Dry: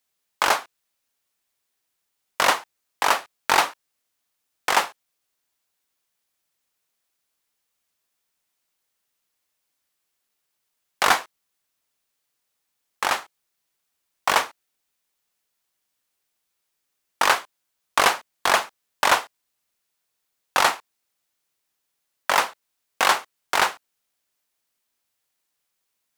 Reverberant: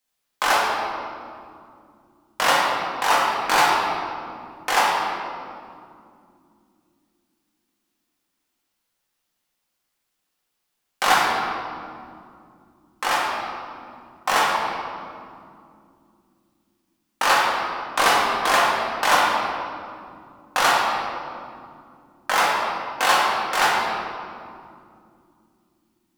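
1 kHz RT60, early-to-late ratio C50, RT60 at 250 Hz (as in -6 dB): 2.2 s, -1.5 dB, 4.5 s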